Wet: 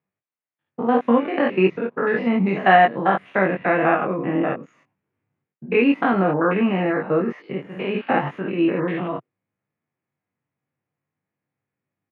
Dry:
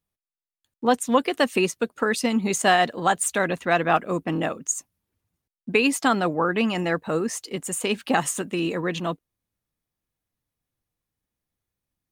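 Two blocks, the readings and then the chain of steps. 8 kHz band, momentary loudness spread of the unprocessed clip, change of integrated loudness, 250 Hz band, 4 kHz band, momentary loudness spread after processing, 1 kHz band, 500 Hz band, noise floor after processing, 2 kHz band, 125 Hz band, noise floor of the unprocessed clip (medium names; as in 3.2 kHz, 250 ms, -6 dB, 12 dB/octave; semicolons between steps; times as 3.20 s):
under -40 dB, 8 LU, +3.5 dB, +4.5 dB, -7.0 dB, 10 LU, +3.5 dB, +4.0 dB, under -85 dBFS, +2.0 dB, +4.5 dB, under -85 dBFS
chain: spectrogram pixelated in time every 100 ms; elliptic band-pass 120–2300 Hz, stop band 50 dB; doubling 21 ms -4.5 dB; trim +5.5 dB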